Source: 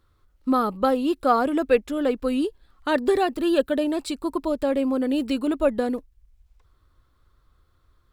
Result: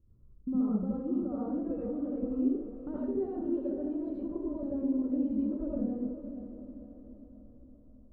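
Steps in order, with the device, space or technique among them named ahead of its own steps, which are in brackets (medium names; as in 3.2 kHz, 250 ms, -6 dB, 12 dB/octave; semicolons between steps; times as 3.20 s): television next door (compression 3:1, threshold -33 dBFS, peak gain reduction 14.5 dB; low-pass 260 Hz 12 dB/octave; reverberation RT60 0.55 s, pre-delay 68 ms, DRR -6.5 dB); level-controlled noise filter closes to 970 Hz, open at -28.5 dBFS; treble shelf 6.3 kHz +8 dB; echo that smears into a reverb 498 ms, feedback 50%, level -10 dB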